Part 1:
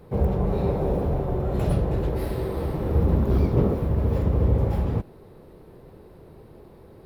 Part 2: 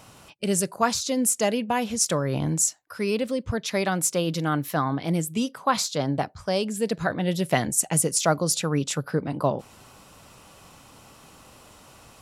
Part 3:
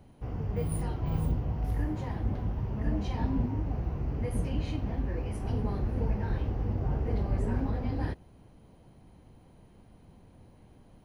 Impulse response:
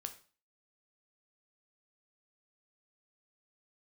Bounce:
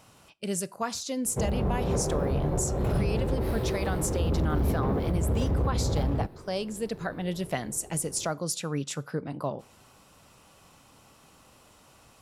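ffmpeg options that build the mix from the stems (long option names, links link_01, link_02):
-filter_complex "[0:a]asoftclip=type=tanh:threshold=-20.5dB,adelay=1250,volume=0dB[link_01];[1:a]volume=-8.5dB,asplit=2[link_02][link_03];[link_03]volume=-8.5dB[link_04];[3:a]atrim=start_sample=2205[link_05];[link_04][link_05]afir=irnorm=-1:irlink=0[link_06];[link_01][link_02][link_06]amix=inputs=3:normalize=0,alimiter=limit=-18dB:level=0:latency=1:release=177"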